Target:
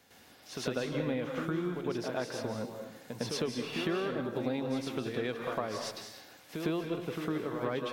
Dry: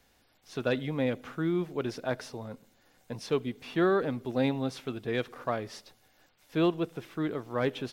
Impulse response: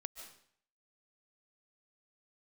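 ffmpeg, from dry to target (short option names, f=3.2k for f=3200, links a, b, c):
-filter_complex "[0:a]highpass=110,acompressor=threshold=-41dB:ratio=6,asplit=2[a][b];[1:a]atrim=start_sample=2205,asetrate=37044,aresample=44100,adelay=106[c];[b][c]afir=irnorm=-1:irlink=0,volume=9.5dB[d];[a][d]amix=inputs=2:normalize=0,volume=2.5dB"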